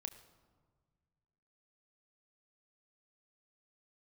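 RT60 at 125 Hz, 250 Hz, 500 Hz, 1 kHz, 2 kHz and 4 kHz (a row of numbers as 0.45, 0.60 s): 2.5, 2.1, 1.6, 1.5, 1.0, 0.85 s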